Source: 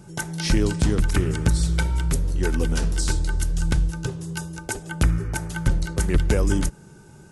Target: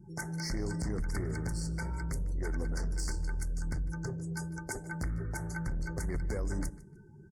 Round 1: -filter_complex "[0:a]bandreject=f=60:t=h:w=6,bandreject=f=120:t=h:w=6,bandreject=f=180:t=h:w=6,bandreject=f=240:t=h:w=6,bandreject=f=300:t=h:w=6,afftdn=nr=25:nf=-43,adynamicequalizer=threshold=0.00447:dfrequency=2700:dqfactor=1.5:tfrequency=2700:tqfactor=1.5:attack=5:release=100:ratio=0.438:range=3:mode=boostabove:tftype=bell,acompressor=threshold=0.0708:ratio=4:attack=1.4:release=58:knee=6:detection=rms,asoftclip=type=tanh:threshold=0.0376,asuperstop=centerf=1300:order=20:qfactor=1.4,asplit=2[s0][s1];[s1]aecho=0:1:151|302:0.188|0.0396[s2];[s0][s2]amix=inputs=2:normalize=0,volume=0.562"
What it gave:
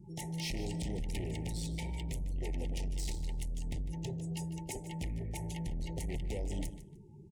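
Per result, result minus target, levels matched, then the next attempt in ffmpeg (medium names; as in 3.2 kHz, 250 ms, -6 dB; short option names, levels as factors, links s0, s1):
saturation: distortion +8 dB; 4 kHz band +5.0 dB; echo-to-direct +6 dB
-filter_complex "[0:a]bandreject=f=60:t=h:w=6,bandreject=f=120:t=h:w=6,bandreject=f=180:t=h:w=6,bandreject=f=240:t=h:w=6,bandreject=f=300:t=h:w=6,afftdn=nr=25:nf=-43,adynamicequalizer=threshold=0.00447:dfrequency=2700:dqfactor=1.5:tfrequency=2700:tqfactor=1.5:attack=5:release=100:ratio=0.438:range=3:mode=boostabove:tftype=bell,acompressor=threshold=0.0708:ratio=4:attack=1.4:release=58:knee=6:detection=rms,asoftclip=type=tanh:threshold=0.0794,asuperstop=centerf=1300:order=20:qfactor=1.4,asplit=2[s0][s1];[s1]aecho=0:1:151|302:0.188|0.0396[s2];[s0][s2]amix=inputs=2:normalize=0,volume=0.562"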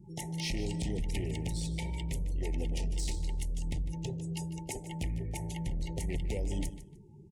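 4 kHz band +5.0 dB; echo-to-direct +6 dB
-filter_complex "[0:a]bandreject=f=60:t=h:w=6,bandreject=f=120:t=h:w=6,bandreject=f=180:t=h:w=6,bandreject=f=240:t=h:w=6,bandreject=f=300:t=h:w=6,afftdn=nr=25:nf=-43,adynamicequalizer=threshold=0.00447:dfrequency=2700:dqfactor=1.5:tfrequency=2700:tqfactor=1.5:attack=5:release=100:ratio=0.438:range=3:mode=boostabove:tftype=bell,acompressor=threshold=0.0708:ratio=4:attack=1.4:release=58:knee=6:detection=rms,asoftclip=type=tanh:threshold=0.0794,asuperstop=centerf=3100:order=20:qfactor=1.4,asplit=2[s0][s1];[s1]aecho=0:1:151|302:0.188|0.0396[s2];[s0][s2]amix=inputs=2:normalize=0,volume=0.562"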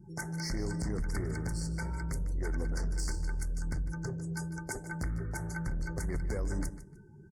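echo-to-direct +6 dB
-filter_complex "[0:a]bandreject=f=60:t=h:w=6,bandreject=f=120:t=h:w=6,bandreject=f=180:t=h:w=6,bandreject=f=240:t=h:w=6,bandreject=f=300:t=h:w=6,afftdn=nr=25:nf=-43,adynamicequalizer=threshold=0.00447:dfrequency=2700:dqfactor=1.5:tfrequency=2700:tqfactor=1.5:attack=5:release=100:ratio=0.438:range=3:mode=boostabove:tftype=bell,acompressor=threshold=0.0708:ratio=4:attack=1.4:release=58:knee=6:detection=rms,asoftclip=type=tanh:threshold=0.0794,asuperstop=centerf=3100:order=20:qfactor=1.4,asplit=2[s0][s1];[s1]aecho=0:1:151|302:0.0944|0.0198[s2];[s0][s2]amix=inputs=2:normalize=0,volume=0.562"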